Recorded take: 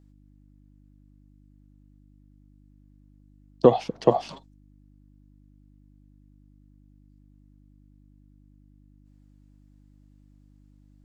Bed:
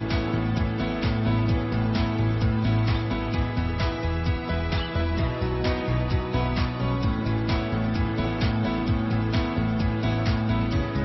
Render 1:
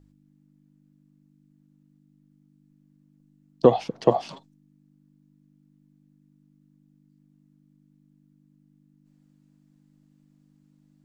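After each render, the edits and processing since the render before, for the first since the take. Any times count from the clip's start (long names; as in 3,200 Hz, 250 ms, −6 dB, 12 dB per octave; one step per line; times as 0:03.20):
hum removal 50 Hz, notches 2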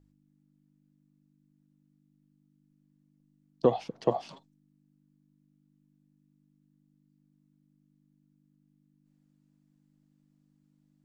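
level −7.5 dB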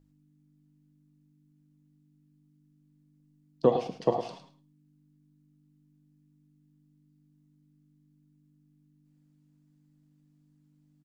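on a send: repeating echo 107 ms, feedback 17%, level −10 dB
on the sum: reverb whose tail is shaped and stops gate 150 ms falling, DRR 9.5 dB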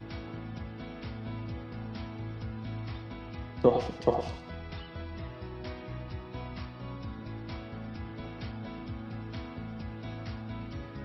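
mix in bed −15.5 dB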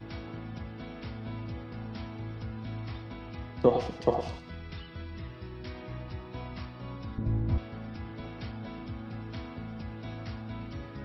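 0:04.39–0:05.75: parametric band 720 Hz −7.5 dB 1.1 octaves
0:07.18–0:07.58: spectral tilt −4 dB per octave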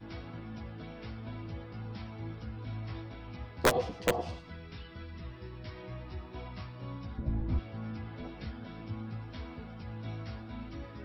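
wrap-around overflow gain 11.5 dB
multi-voice chorus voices 4, 0.46 Hz, delay 14 ms, depth 4.2 ms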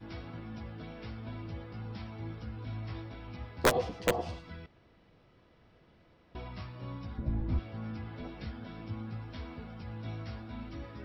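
0:04.66–0:06.35: fill with room tone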